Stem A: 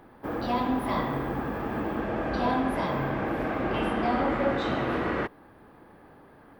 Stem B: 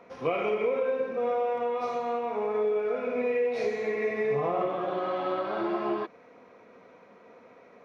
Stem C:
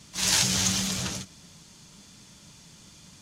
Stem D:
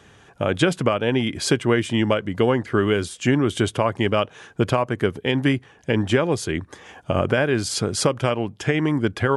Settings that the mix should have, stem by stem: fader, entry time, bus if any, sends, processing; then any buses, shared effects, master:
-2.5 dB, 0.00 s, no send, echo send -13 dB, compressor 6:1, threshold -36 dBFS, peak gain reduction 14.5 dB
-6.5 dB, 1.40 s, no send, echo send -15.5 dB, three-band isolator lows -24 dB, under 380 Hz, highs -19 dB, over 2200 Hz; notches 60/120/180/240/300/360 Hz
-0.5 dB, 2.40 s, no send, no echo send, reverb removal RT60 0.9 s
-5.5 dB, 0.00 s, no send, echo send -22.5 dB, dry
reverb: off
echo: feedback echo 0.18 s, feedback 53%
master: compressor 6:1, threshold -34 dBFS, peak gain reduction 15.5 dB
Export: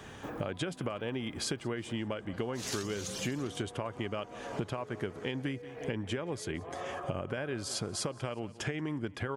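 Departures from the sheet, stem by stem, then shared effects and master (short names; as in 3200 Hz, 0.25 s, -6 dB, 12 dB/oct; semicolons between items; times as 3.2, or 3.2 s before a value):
stem B: entry 1.40 s -> 2.20 s; stem D -5.5 dB -> +1.5 dB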